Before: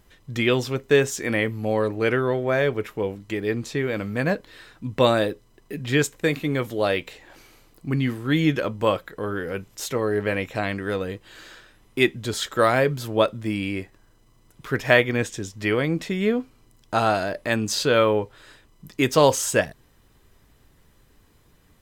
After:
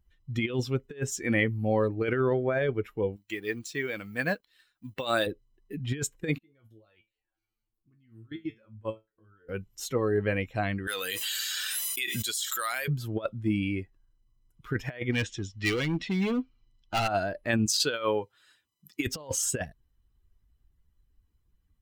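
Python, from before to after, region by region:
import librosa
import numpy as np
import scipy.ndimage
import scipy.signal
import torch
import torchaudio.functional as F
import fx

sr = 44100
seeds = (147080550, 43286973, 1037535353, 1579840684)

y = fx.chain(x, sr, fx.law_mismatch(coded='A'),
    fx.tilt_eq(slope=2.5), at=(3.16, 5.27))
y = fx.chain(y, sr, fx.level_steps(step_db=19),
    fx.comb_fb(f0_hz=110.0, decay_s=0.28, harmonics='all', damping=0.0, mix_pct=90), at=(6.38, 9.49))
y = fx.chain(y, sr, fx.differentiator(),
    fx.env_flatten(amount_pct=100), at=(10.87, 12.88))
y = fx.chain(y, sr, fx.lowpass(hz=3700.0, slope=12),
    fx.overload_stage(gain_db=23.5),
    fx.high_shelf(hz=2400.0, db=12.0), at=(15.12, 17.08))
y = fx.chain(y, sr, fx.highpass(hz=82.0, slope=12),
    fx.tilt_eq(slope=2.0), at=(17.66, 19.07))
y = fx.bin_expand(y, sr, power=1.5)
y = fx.peak_eq(y, sr, hz=11000.0, db=-3.0, octaves=2.0)
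y = fx.over_compress(y, sr, threshold_db=-26.0, ratio=-0.5)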